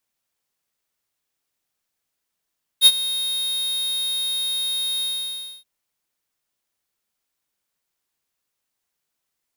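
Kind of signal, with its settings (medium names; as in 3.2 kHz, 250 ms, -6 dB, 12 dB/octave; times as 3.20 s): ADSR square 3.72 kHz, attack 53 ms, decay 46 ms, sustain -16 dB, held 2.21 s, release 617 ms -8.5 dBFS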